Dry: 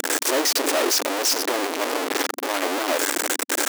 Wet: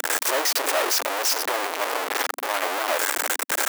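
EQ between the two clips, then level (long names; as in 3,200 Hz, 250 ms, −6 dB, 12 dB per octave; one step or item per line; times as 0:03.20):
high-pass filter 660 Hz 12 dB per octave
parametric band 5,700 Hz −5.5 dB 2.3 octaves
+2.5 dB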